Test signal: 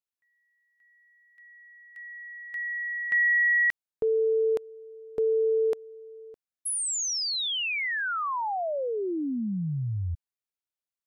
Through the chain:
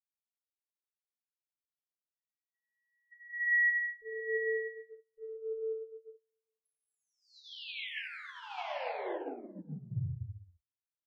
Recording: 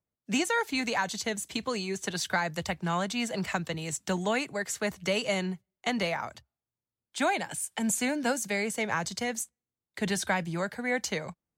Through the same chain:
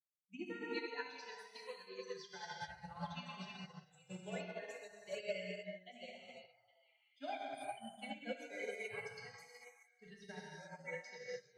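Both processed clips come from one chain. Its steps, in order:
spectral dynamics exaggerated over time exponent 3
parametric band 1,200 Hz −12 dB 0.61 octaves
notch filter 3,700 Hz, Q 13
treble cut that deepens with the level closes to 1,500 Hz, closed at −27 dBFS
octave-band graphic EQ 125/250/500/4,000/8,000 Hz +3/−10/+4/+4/−10 dB
brickwall limiter −30.5 dBFS
on a send: echo through a band-pass that steps 408 ms, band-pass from 920 Hz, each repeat 1.4 octaves, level −3.5 dB
on the sum: reverb whose tail is shaped and stops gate 470 ms flat, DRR −6 dB
expander for the loud parts 2.5 to 1, over −44 dBFS
level −4.5 dB

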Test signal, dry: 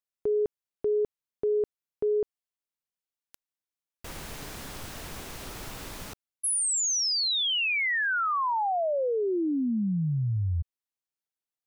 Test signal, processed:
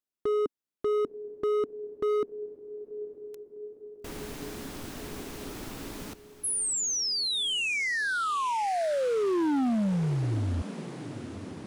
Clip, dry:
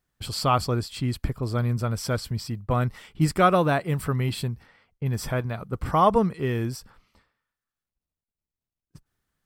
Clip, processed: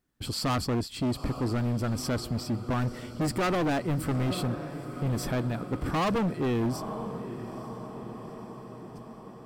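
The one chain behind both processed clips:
parametric band 280 Hz +10.5 dB 1.1 octaves
feedback delay with all-pass diffusion 886 ms, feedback 64%, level −16 dB
hard clipping −22 dBFS
level −2.5 dB

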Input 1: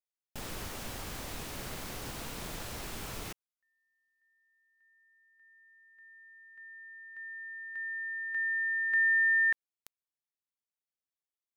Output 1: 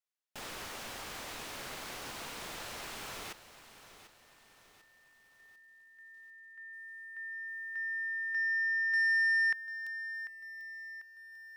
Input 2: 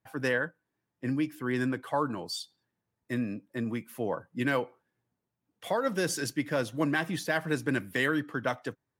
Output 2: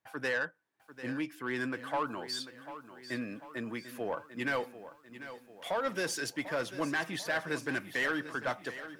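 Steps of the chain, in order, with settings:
mid-hump overdrive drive 15 dB, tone 5,400 Hz, clips at −14 dBFS
feedback echo at a low word length 744 ms, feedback 55%, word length 9 bits, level −13 dB
level −8 dB

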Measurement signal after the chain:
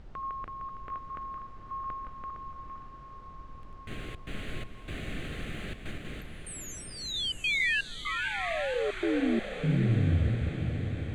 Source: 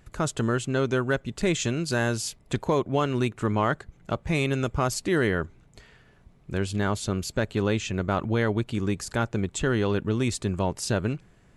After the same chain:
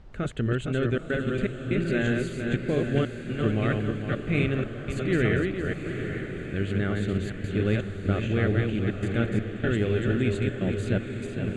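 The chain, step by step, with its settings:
feedback delay that plays each chunk backwards 230 ms, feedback 57%, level −3 dB
gate pattern ".xxxxxxx.xxx." 123 BPM −24 dB
phaser with its sweep stopped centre 2,300 Hz, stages 4
background noise brown −47 dBFS
high-frequency loss of the air 100 metres
feedback delay with all-pass diffusion 842 ms, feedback 58%, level −9 dB

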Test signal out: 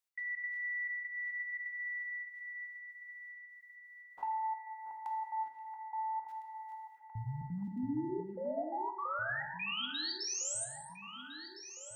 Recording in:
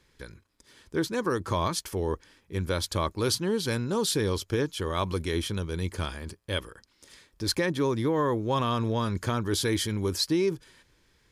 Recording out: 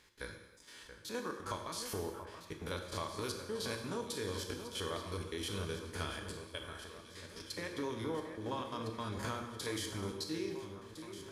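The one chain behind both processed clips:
spectrum averaged block by block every 50 ms
low-shelf EQ 390 Hz −9.5 dB
downward compressor 16 to 1, threshold −40 dBFS
gate pattern "x.xx.xxxxx..xx" 172 BPM −60 dB
on a send: delay that swaps between a low-pass and a high-pass 679 ms, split 2,100 Hz, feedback 75%, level −9.5 dB
on the sum: reverb whose tail is shaped and stops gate 340 ms falling, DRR 3.5 dB
level +3 dB

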